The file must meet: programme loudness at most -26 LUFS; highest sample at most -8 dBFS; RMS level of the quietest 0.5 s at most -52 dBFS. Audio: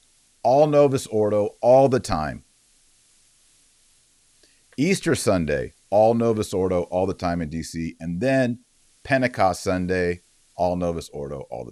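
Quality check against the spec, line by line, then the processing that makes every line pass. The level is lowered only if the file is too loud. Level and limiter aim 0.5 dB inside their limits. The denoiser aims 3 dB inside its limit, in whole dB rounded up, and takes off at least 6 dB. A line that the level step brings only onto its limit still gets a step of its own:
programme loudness -22.0 LUFS: fail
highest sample -6.0 dBFS: fail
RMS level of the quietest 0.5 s -60 dBFS: OK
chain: gain -4.5 dB

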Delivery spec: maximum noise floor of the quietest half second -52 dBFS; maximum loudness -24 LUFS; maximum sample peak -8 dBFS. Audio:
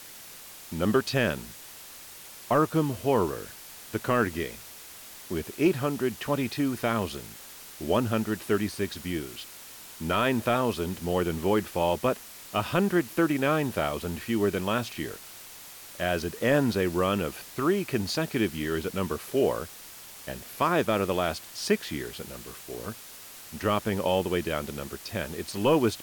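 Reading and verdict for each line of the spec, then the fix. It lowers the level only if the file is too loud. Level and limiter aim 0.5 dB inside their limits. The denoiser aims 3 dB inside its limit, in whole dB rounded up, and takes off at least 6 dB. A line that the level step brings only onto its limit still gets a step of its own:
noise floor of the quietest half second -46 dBFS: fail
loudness -28.0 LUFS: OK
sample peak -12.0 dBFS: OK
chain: denoiser 9 dB, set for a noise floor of -46 dBFS

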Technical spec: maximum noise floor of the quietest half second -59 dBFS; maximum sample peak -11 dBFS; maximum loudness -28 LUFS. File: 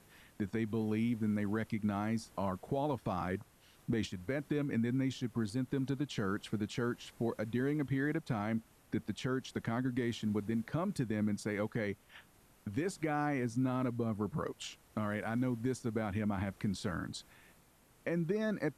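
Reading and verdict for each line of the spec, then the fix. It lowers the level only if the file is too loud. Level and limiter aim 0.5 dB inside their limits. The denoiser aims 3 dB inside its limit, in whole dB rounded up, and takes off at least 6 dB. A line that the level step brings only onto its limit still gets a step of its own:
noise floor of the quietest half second -65 dBFS: OK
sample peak -23.5 dBFS: OK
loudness -36.5 LUFS: OK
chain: none

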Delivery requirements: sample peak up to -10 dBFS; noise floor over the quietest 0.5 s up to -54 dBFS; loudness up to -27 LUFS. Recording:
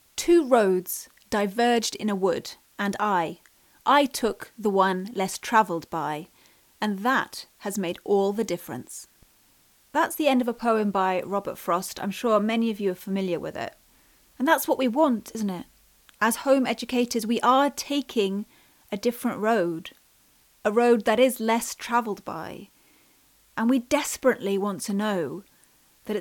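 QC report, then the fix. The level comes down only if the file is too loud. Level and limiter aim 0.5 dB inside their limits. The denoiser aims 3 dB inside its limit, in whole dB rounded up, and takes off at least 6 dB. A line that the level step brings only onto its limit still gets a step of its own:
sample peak -7.0 dBFS: fail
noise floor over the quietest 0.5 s -61 dBFS: OK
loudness -25.0 LUFS: fail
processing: gain -2.5 dB; limiter -10.5 dBFS

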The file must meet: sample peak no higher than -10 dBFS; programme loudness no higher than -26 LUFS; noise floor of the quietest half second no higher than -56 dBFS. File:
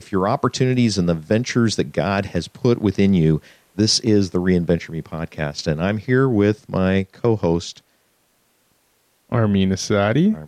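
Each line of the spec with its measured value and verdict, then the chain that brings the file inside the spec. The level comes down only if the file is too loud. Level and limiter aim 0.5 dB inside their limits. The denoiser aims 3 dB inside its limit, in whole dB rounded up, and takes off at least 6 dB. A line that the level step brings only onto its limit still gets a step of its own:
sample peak -6.0 dBFS: fail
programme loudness -19.5 LUFS: fail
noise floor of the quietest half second -63 dBFS: OK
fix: gain -7 dB

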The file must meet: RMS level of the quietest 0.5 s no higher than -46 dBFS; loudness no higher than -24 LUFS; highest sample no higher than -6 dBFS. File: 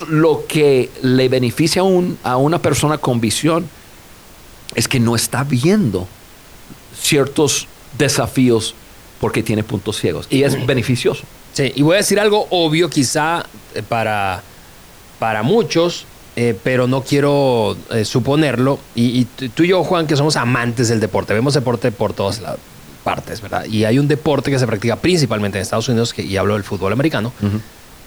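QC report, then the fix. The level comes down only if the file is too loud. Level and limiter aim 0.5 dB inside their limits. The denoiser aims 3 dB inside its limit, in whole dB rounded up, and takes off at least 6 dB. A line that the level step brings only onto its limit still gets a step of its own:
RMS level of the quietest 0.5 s -41 dBFS: fail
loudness -16.5 LUFS: fail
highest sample -4.0 dBFS: fail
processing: gain -8 dB

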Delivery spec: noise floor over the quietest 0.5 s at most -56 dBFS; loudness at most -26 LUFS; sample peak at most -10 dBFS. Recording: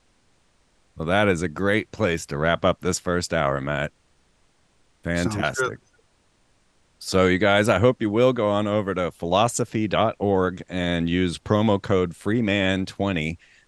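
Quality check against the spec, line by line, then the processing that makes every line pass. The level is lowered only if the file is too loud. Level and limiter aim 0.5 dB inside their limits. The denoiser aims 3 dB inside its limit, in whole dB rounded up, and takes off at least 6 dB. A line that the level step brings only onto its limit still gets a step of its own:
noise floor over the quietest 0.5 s -63 dBFS: OK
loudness -22.5 LUFS: fail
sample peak -4.5 dBFS: fail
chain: gain -4 dB; limiter -10.5 dBFS

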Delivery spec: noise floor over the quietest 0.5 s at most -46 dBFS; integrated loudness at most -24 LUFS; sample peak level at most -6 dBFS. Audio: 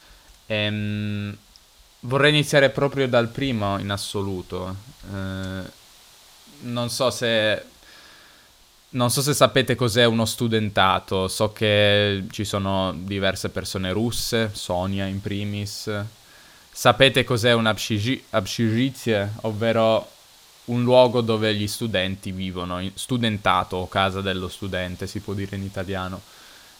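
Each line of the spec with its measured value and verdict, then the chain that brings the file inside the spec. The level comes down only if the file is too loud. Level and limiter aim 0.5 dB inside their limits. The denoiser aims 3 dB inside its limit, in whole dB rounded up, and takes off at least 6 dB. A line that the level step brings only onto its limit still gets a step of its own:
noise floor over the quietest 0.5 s -54 dBFS: OK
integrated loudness -22.0 LUFS: fail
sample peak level -2.0 dBFS: fail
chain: gain -2.5 dB; limiter -6.5 dBFS

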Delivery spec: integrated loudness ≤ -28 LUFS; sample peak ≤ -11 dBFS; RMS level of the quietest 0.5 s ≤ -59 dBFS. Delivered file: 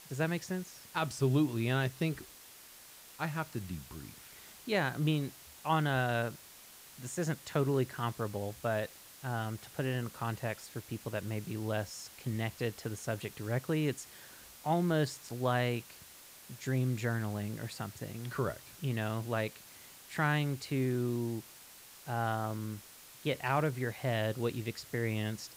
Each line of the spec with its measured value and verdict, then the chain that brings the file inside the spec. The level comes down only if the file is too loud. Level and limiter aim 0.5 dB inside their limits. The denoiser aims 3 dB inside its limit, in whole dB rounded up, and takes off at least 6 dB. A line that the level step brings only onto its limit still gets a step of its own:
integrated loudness -35.0 LUFS: OK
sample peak -17.5 dBFS: OK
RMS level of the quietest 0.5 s -54 dBFS: fail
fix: denoiser 8 dB, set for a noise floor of -54 dBFS

